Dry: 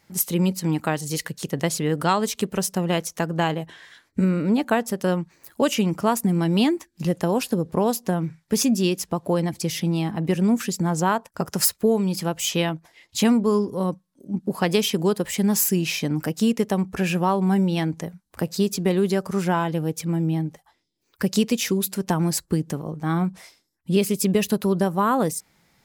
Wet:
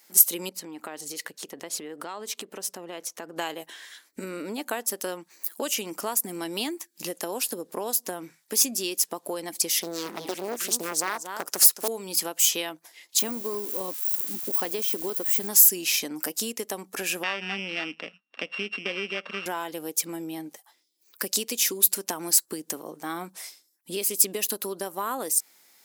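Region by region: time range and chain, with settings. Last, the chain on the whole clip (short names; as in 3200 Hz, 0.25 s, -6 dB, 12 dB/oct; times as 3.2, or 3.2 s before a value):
0.49–3.37 LPF 1800 Hz 6 dB/oct + compressor 12:1, threshold -28 dBFS
9.79–11.88 echo 0.229 s -11.5 dB + Doppler distortion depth 1 ms
13.19–15.49 switching spikes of -22 dBFS + de-esser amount 55%
17.23–19.46 sample sorter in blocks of 16 samples + speaker cabinet 180–3400 Hz, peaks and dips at 210 Hz +4 dB, 360 Hz -8 dB, 870 Hz -6 dB, 1300 Hz +4 dB
whole clip: resonant low shelf 200 Hz -11 dB, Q 1.5; compressor 2.5:1, threshold -26 dBFS; RIAA curve recording; gain -2 dB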